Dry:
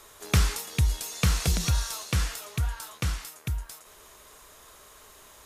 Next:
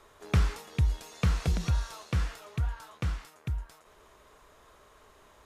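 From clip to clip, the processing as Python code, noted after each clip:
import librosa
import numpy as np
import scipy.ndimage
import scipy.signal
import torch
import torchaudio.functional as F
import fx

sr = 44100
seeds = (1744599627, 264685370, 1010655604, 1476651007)

y = fx.lowpass(x, sr, hz=1600.0, slope=6)
y = F.gain(torch.from_numpy(y), -2.0).numpy()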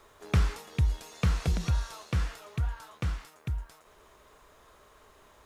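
y = fx.quant_dither(x, sr, seeds[0], bits=12, dither='none')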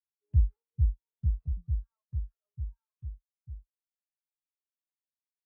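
y = fx.self_delay(x, sr, depth_ms=0.62)
y = fx.spectral_expand(y, sr, expansion=2.5)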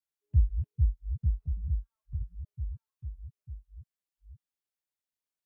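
y = fx.reverse_delay(x, sr, ms=490, wet_db=-9)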